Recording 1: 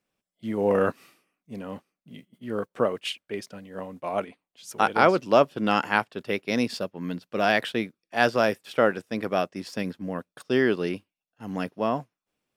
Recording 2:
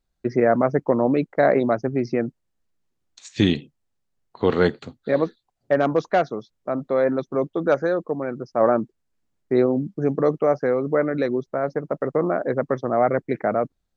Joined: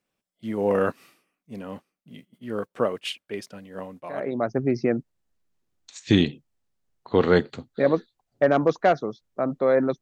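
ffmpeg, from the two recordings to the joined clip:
-filter_complex "[0:a]apad=whole_dur=10.01,atrim=end=10.01,atrim=end=4.59,asetpts=PTS-STARTPTS[a];[1:a]atrim=start=1.16:end=7.3,asetpts=PTS-STARTPTS[b];[a][b]acrossfade=d=0.72:c1=qua:c2=qua"

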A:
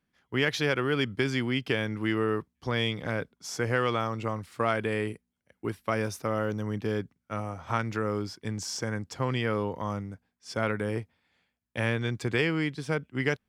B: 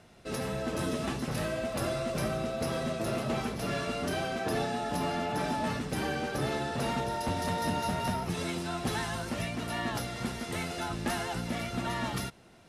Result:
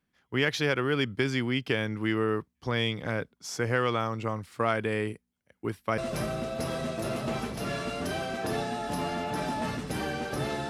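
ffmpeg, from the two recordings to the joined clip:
-filter_complex "[0:a]apad=whole_dur=10.69,atrim=end=10.69,atrim=end=5.982[a];[1:a]atrim=start=1.998:end=6.71[b];[a][b]acrossfade=d=0.004:c1=hsin:c2=hsin"

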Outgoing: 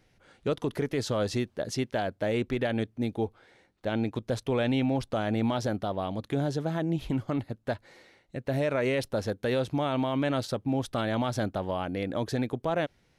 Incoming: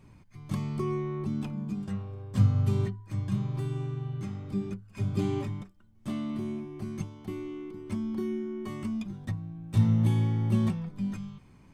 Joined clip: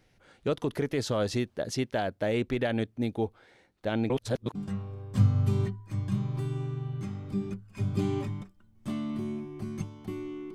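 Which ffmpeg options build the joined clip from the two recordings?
-filter_complex "[0:a]apad=whole_dur=10.54,atrim=end=10.54,asplit=2[a][b];[a]atrim=end=4.102[c];[b]atrim=start=4.098:end=4.552,asetpts=PTS-STARTPTS,areverse[d];[1:a]atrim=start=1.748:end=7.74[e];[c][d]acrossfade=d=0.004:c1=hsin:c2=hsin[f];[f][e]acrossfade=d=0.004:c1=hsin:c2=hsin"

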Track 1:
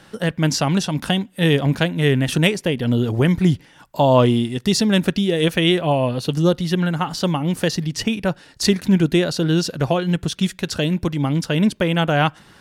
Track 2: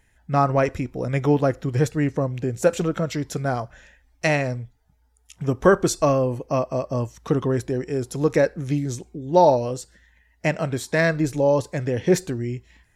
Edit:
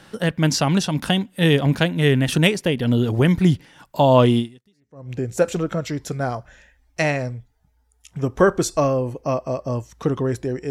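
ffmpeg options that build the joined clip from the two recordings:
-filter_complex "[0:a]apad=whole_dur=10.7,atrim=end=10.7,atrim=end=5.11,asetpts=PTS-STARTPTS[a];[1:a]atrim=start=1.64:end=7.95,asetpts=PTS-STARTPTS[b];[a][b]acrossfade=d=0.72:c1=exp:c2=exp"

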